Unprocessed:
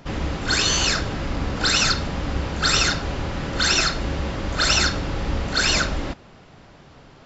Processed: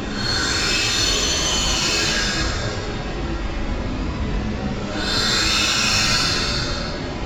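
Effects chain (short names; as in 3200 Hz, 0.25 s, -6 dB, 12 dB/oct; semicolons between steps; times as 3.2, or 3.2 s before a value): non-linear reverb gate 0.19 s falling, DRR -6 dB; added harmonics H 5 -24 dB, 6 -29 dB, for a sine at 1.5 dBFS; Paulstretch 4.2×, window 0.10 s, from 0.44; gain -8 dB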